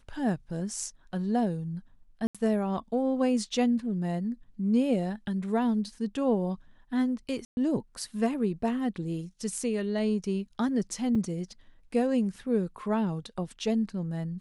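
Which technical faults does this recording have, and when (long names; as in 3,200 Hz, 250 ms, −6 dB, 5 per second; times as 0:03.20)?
0:02.27–0:02.35: drop-out 76 ms
0:07.45–0:07.57: drop-out 121 ms
0:11.15: drop-out 4.1 ms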